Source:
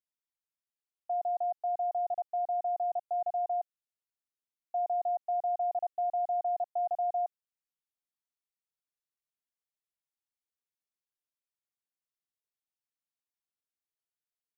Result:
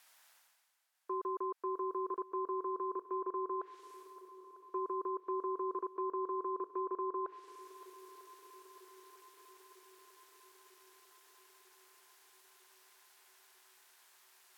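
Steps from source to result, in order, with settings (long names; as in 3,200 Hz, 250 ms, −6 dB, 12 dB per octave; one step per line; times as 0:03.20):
treble cut that deepens with the level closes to 880 Hz, closed at −28 dBFS
low shelf with overshoot 790 Hz −14 dB, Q 3
reversed playback
upward compression, threshold −51 dBFS
reversed playback
ring modulation 330 Hz
feedback echo with a long and a short gap by turns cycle 948 ms, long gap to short 1.5 to 1, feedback 63%, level −17 dB
level +9 dB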